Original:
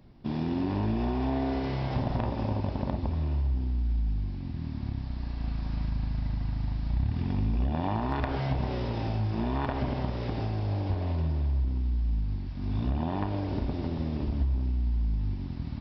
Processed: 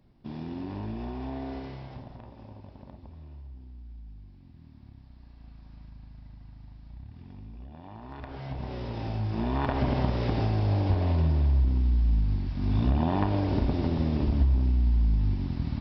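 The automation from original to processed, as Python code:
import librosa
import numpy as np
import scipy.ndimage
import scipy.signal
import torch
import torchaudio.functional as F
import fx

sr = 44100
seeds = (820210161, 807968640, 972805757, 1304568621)

y = fx.gain(x, sr, db=fx.line((1.57, -7.0), (2.18, -17.0), (7.84, -17.0), (8.66, -5.5), (9.97, 4.5)))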